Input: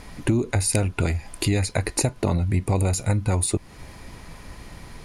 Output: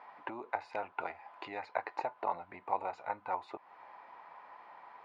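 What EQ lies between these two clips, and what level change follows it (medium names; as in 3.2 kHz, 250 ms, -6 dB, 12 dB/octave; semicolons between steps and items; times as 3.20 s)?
ladder band-pass 1 kHz, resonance 55%; distance through air 170 m; +5.5 dB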